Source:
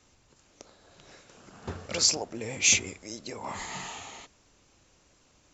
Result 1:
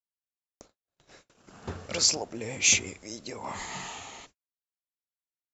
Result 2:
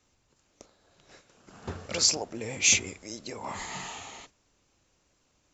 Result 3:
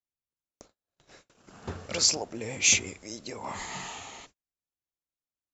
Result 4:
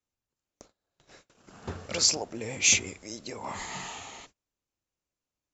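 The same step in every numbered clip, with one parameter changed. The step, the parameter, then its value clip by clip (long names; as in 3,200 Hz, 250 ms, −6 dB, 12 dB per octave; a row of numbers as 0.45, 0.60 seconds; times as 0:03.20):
noise gate, range: −54, −7, −40, −28 decibels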